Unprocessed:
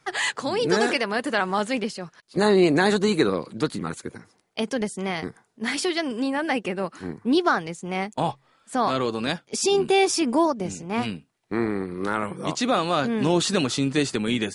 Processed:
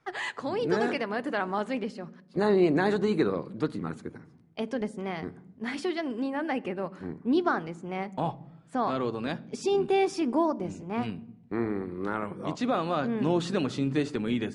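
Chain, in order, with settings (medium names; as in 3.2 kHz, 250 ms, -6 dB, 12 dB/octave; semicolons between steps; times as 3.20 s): low-pass 1.6 kHz 6 dB/octave; on a send: peaking EQ 160 Hz +12 dB 2.5 oct + reverberation RT60 0.80 s, pre-delay 3 ms, DRR 19 dB; on the sum: trim -4.5 dB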